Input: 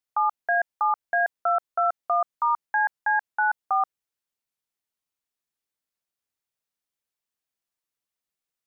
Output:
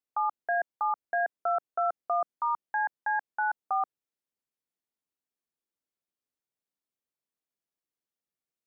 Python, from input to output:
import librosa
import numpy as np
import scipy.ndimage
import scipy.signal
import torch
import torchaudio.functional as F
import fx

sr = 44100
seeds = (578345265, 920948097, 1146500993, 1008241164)

y = fx.peak_eq(x, sr, hz=300.0, db=9.5, octaves=2.5)
y = y * librosa.db_to_amplitude(-8.5)